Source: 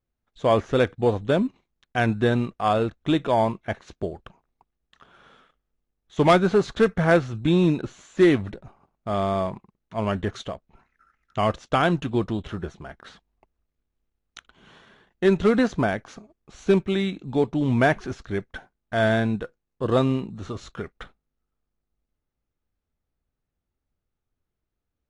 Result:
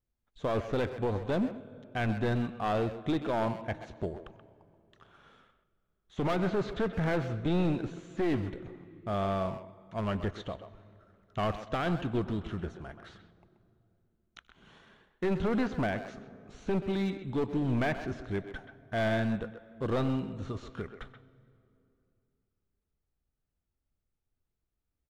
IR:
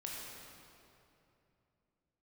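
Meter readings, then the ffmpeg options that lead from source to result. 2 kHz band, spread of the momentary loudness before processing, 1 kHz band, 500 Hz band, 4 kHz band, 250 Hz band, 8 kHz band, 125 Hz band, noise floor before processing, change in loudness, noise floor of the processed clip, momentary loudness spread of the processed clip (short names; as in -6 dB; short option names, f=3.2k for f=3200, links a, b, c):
-9.5 dB, 16 LU, -9.5 dB, -10.0 dB, -10.0 dB, -8.0 dB, n/a, -7.0 dB, -83 dBFS, -9.5 dB, -84 dBFS, 15 LU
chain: -filter_complex "[0:a]acrossover=split=4300[a][b];[b]acompressor=threshold=-56dB:ratio=4:attack=1:release=60[c];[a][c]amix=inputs=2:normalize=0,lowshelf=f=160:g=5,asplit=2[d][e];[1:a]atrim=start_sample=2205,adelay=95[f];[e][f]afir=irnorm=-1:irlink=0,volume=-19dB[g];[d][g]amix=inputs=2:normalize=0,aeval=exprs='clip(val(0),-1,0.1)':c=same,alimiter=limit=-14.5dB:level=0:latency=1:release=27,asplit=2[h][i];[i]adelay=130,highpass=300,lowpass=3.4k,asoftclip=type=hard:threshold=-22.5dB,volume=-9dB[j];[h][j]amix=inputs=2:normalize=0,volume=-6.5dB"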